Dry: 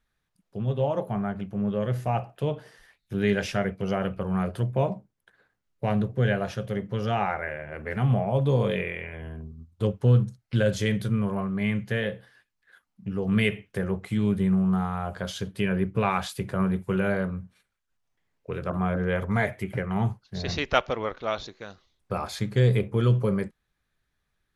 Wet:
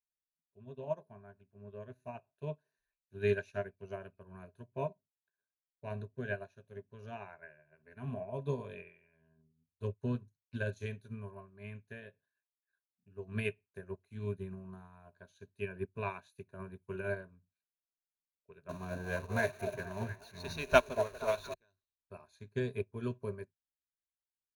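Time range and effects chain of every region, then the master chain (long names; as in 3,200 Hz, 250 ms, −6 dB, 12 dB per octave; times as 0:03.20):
0:18.69–0:21.54: converter with a step at zero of −28 dBFS + echo through a band-pass that steps 234 ms, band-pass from 580 Hz, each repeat 0.7 octaves, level −2 dB
whole clip: EQ curve with evenly spaced ripples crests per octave 1.5, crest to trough 14 dB; expander for the loud parts 2.5 to 1, over −35 dBFS; level −4 dB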